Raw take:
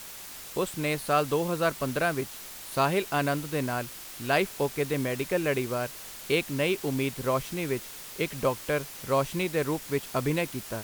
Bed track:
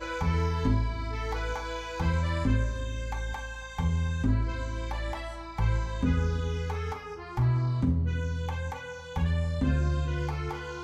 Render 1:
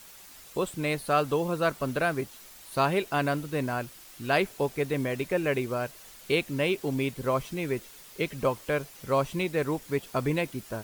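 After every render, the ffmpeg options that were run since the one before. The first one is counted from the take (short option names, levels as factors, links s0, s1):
-af "afftdn=nr=8:nf=-43"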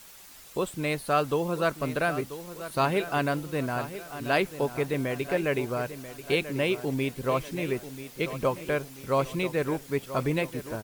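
-filter_complex "[0:a]asplit=2[s0][s1];[s1]adelay=987,lowpass=f=5000:p=1,volume=0.237,asplit=2[s2][s3];[s3]adelay=987,lowpass=f=5000:p=1,volume=0.47,asplit=2[s4][s5];[s5]adelay=987,lowpass=f=5000:p=1,volume=0.47,asplit=2[s6][s7];[s7]adelay=987,lowpass=f=5000:p=1,volume=0.47,asplit=2[s8][s9];[s9]adelay=987,lowpass=f=5000:p=1,volume=0.47[s10];[s0][s2][s4][s6][s8][s10]amix=inputs=6:normalize=0"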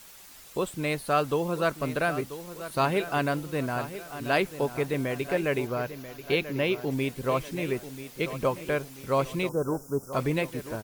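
-filter_complex "[0:a]asettb=1/sr,asplit=3[s0][s1][s2];[s0]atrim=end=5.674[s3];[s1]atrim=start=5.67:end=6.91,asetpts=PTS-STARTPTS,afade=t=in:d=0.004:c=qsin,afade=t=out:st=1.236:d=0.004:c=qsin,equalizer=f=8500:t=o:w=0.31:g=-14.5[s4];[s2]atrim=start=6.906[s5];[s3][s4]acrossfade=d=0.004:c1=hsin:c2=qsin[s6];[s6][s5]acrossfade=d=0.004:c1=qsin:c2=hsin,asettb=1/sr,asplit=3[s7][s8][s9];[s7]atrim=end=9.494[s10];[s8]atrim=start=9.49:end=10.13,asetpts=PTS-STARTPTS,afade=t=in:d=0.004:c=qsin,afade=t=out:st=0.636:d=0.004:c=qsin,asuperstop=centerf=2800:order=20:qfactor=0.76[s11];[s9]atrim=start=10.126[s12];[s10][s11]acrossfade=d=0.004:c1=hsin:c2=qsin[s13];[s13][s12]acrossfade=d=0.004:c1=qsin:c2=hsin"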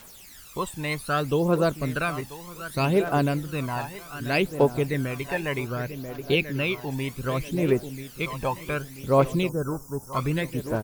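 -af "aphaser=in_gain=1:out_gain=1:delay=1.2:decay=0.63:speed=0.65:type=triangular"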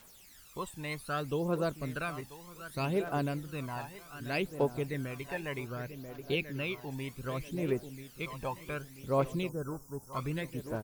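-af "volume=0.335"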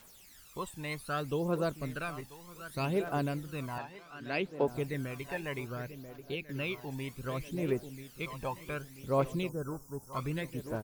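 -filter_complex "[0:a]asettb=1/sr,asplit=3[s0][s1][s2];[s0]atrim=end=1.874[s3];[s1]atrim=start=1.87:end=2.49,asetpts=PTS-STARTPTS,afade=t=in:d=0.004:c=qsin,afade=t=out:st=0.616:d=0.004:c=qsin,aeval=exprs='if(lt(val(0),0),0.708*val(0),val(0))':c=same[s4];[s2]atrim=start=2.486[s5];[s3][s4]acrossfade=d=0.004:c1=hsin:c2=qsin[s6];[s6][s5]acrossfade=d=0.004:c1=qsin:c2=hsin,asettb=1/sr,asplit=3[s7][s8][s9];[s7]atrim=end=3.784[s10];[s8]atrim=start=3.78:end=4.68,asetpts=PTS-STARTPTS,afade=t=in:d=0.004:c=qsin,afade=t=out:st=0.896:d=0.004:c=qsin,acrossover=split=150 5100:gain=0.2 1 0.158[s11][s12][s13];[s11][s12][s13]amix=inputs=3:normalize=0[s14];[s9]atrim=start=4.676[s15];[s10][s14]acrossfade=d=0.004:c1=hsin:c2=qsin[s16];[s16][s15]acrossfade=d=0.004:c1=qsin:c2=hsin,asplit=2[s17][s18];[s17]atrim=end=6.49,asetpts=PTS-STARTPTS,afade=t=out:st=5.78:d=0.71:silence=0.375837[s19];[s18]atrim=start=6.49,asetpts=PTS-STARTPTS,afade=t=in:d=0.004:c=hsin:silence=0.375837[s20];[s19][s20]concat=n=2:v=0:a=1"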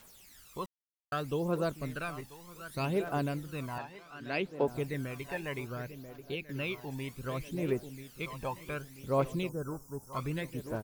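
-filter_complex "[0:a]asplit=3[s0][s1][s2];[s0]atrim=end=0.66,asetpts=PTS-STARTPTS,afade=t=out:st=0.656:d=0.004:c=hsin[s3];[s1]atrim=start=0.66:end=1.12,asetpts=PTS-STARTPTS,volume=0[s4];[s2]atrim=start=1.12,asetpts=PTS-STARTPTS,afade=t=in:d=0.004:c=hsin[s5];[s3][s4][s5]concat=n=3:v=0:a=1"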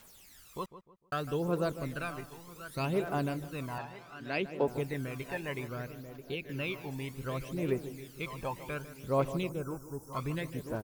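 -filter_complex "[0:a]asplit=2[s0][s1];[s1]adelay=151,lowpass=f=1700:p=1,volume=0.237,asplit=2[s2][s3];[s3]adelay=151,lowpass=f=1700:p=1,volume=0.36,asplit=2[s4][s5];[s5]adelay=151,lowpass=f=1700:p=1,volume=0.36,asplit=2[s6][s7];[s7]adelay=151,lowpass=f=1700:p=1,volume=0.36[s8];[s0][s2][s4][s6][s8]amix=inputs=5:normalize=0"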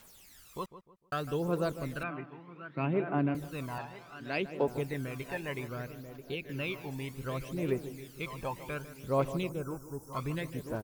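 -filter_complex "[0:a]asettb=1/sr,asplit=3[s0][s1][s2];[s0]atrim=end=2.034[s3];[s1]atrim=start=2.03:end=3.35,asetpts=PTS-STARTPTS,afade=t=in:d=0.004:c=qsin,afade=t=out:st=1.316:d=0.004:c=qsin,highpass=f=140:w=0.5412,highpass=f=140:w=1.3066,equalizer=f=140:t=q:w=4:g=5,equalizer=f=300:t=q:w=4:g=7,equalizer=f=480:t=q:w=4:g=-3,equalizer=f=2400:t=q:w=4:g=3,lowpass=f=2500:w=0.5412,lowpass=f=2500:w=1.3066[s4];[s2]atrim=start=3.346[s5];[s3][s4]acrossfade=d=0.004:c1=hsin:c2=qsin[s6];[s6][s5]acrossfade=d=0.004:c1=qsin:c2=hsin"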